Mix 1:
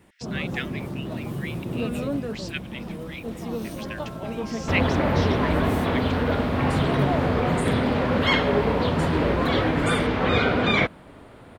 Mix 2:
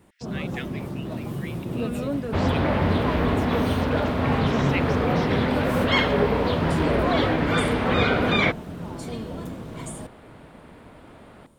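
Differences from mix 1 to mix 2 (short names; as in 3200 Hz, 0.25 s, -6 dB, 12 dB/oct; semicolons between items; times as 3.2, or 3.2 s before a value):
speech -5.0 dB; second sound: entry -2.35 s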